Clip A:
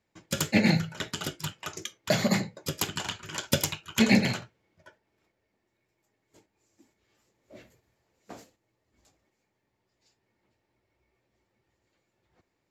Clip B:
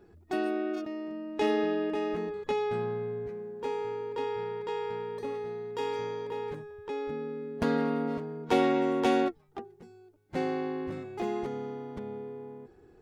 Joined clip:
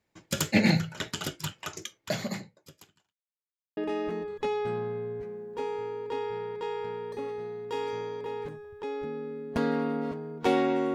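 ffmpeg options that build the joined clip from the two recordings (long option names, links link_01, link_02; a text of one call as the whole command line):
ffmpeg -i cue0.wav -i cue1.wav -filter_complex "[0:a]apad=whole_dur=10.94,atrim=end=10.94,asplit=2[link_01][link_02];[link_01]atrim=end=3.17,asetpts=PTS-STARTPTS,afade=type=out:start_time=1.7:duration=1.47:curve=qua[link_03];[link_02]atrim=start=3.17:end=3.77,asetpts=PTS-STARTPTS,volume=0[link_04];[1:a]atrim=start=1.83:end=9,asetpts=PTS-STARTPTS,afade=type=in:duration=0.004:curve=hsin[link_05];[link_03][link_04][link_05]concat=n=3:v=0:a=1" out.wav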